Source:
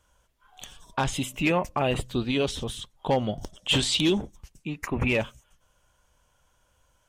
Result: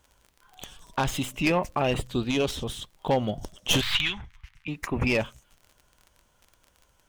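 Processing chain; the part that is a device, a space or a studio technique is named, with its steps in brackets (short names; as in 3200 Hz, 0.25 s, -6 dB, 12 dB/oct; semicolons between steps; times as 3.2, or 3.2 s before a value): record under a worn stylus (tracing distortion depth 0.092 ms; crackle 33/s -39 dBFS; pink noise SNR 42 dB); 3.81–4.68 EQ curve 110 Hz 0 dB, 230 Hz -19 dB, 530 Hz -24 dB, 910 Hz -3 dB, 2100 Hz +9 dB, 7600 Hz -14 dB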